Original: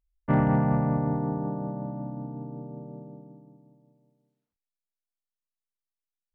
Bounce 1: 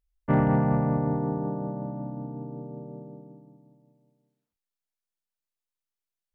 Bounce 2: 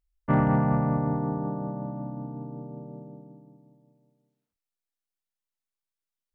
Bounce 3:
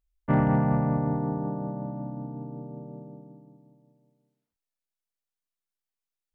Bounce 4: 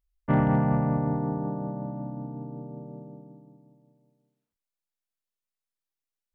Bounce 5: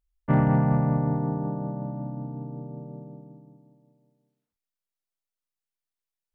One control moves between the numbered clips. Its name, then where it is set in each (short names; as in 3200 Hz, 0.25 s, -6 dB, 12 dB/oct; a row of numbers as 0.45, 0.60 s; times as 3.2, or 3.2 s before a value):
dynamic EQ, frequency: 430, 1200, 8600, 3300, 140 Hz